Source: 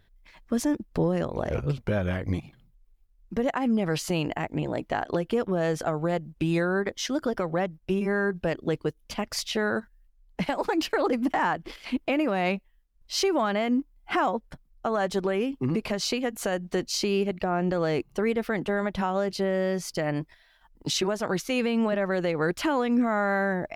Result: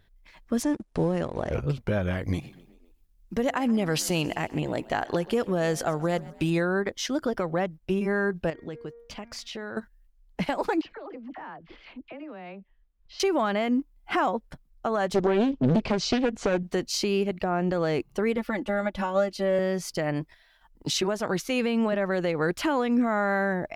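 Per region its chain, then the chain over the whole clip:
0.63–1.51 G.711 law mismatch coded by A + brick-wall FIR low-pass 11000 Hz
2.17–6.5 high shelf 3400 Hz +7.5 dB + frequency-shifting echo 0.129 s, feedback 55%, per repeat +39 Hz, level -21 dB
8.5–9.77 bell 12000 Hz -9.5 dB 0.87 oct + de-hum 234.2 Hz, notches 10 + compressor 2:1, threshold -40 dBFS
10.81–13.2 Bessel low-pass 3000 Hz, order 4 + compressor 2:1, threshold -50 dBFS + dispersion lows, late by 45 ms, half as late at 890 Hz
15.14–16.63 LPF 6600 Hz 24 dB/oct + low shelf 450 Hz +7 dB + Doppler distortion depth 0.84 ms
18.37–19.59 comb 3.5 ms, depth 92% + upward expander, over -36 dBFS
whole clip: dry

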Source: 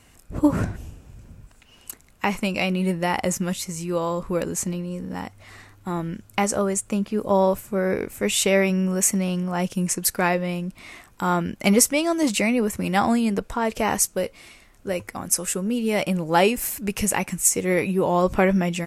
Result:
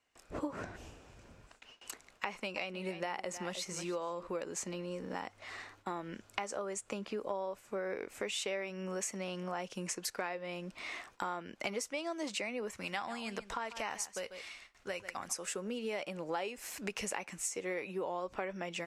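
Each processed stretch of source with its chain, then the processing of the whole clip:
2.25–4.27 notch 7200 Hz, Q 24 + echo 0.31 s -16 dB
12.73–15.35 bell 400 Hz -9 dB 2.2 oct + echo 0.143 s -14.5 dB
whole clip: gate with hold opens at -40 dBFS; three-band isolator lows -16 dB, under 340 Hz, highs -18 dB, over 7100 Hz; compressor 6:1, threshold -36 dBFS

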